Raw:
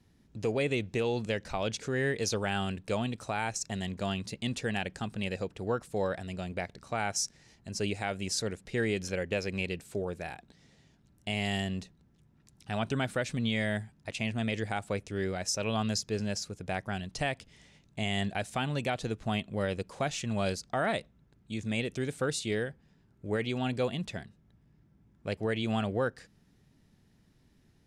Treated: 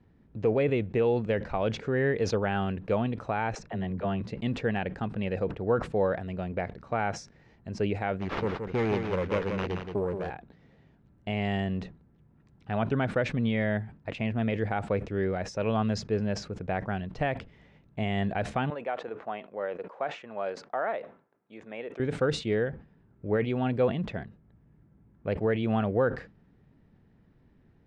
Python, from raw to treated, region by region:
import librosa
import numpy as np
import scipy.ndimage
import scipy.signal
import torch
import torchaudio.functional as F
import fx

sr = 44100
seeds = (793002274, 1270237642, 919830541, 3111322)

y = fx.chain(x, sr, fx.lowpass(hz=2300.0, slope=6),
    fx.dispersion(late='lows', ms=42.0, hz=390.0), at=(3.55, 4.21))
y = fx.chain(y, sr, fx.self_delay(depth_ms=0.31),
    fx.sample_hold(seeds[0], rate_hz=8800.0, jitter_pct=0),
    fx.echo_single(ms=174, db=-6.5), at=(8.19, 10.3))
y = fx.chain(y, sr, fx.bandpass_edges(low_hz=590.0, high_hz=7300.0),
    fx.peak_eq(hz=4800.0, db=-11.5, octaves=2.3), at=(18.7, 22.0))
y = scipy.signal.sosfilt(scipy.signal.butter(2, 1800.0, 'lowpass', fs=sr, output='sos'), y)
y = fx.peak_eq(y, sr, hz=480.0, db=3.0, octaves=0.37)
y = fx.sustainer(y, sr, db_per_s=140.0)
y = F.gain(torch.from_numpy(y), 3.5).numpy()